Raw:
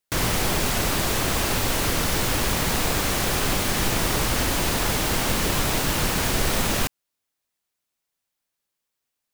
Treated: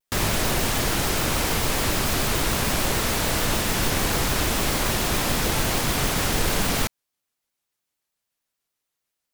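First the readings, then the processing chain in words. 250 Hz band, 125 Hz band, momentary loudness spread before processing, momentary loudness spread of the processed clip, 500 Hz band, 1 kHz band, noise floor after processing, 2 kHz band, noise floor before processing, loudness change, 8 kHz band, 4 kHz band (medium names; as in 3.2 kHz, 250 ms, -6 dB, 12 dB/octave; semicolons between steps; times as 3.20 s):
0.0 dB, 0.0 dB, 0 LU, 0 LU, 0.0 dB, 0.0 dB, -82 dBFS, 0.0 dB, -82 dBFS, 0.0 dB, 0.0 dB, 0.0 dB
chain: vibrato with a chosen wave square 6.8 Hz, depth 250 cents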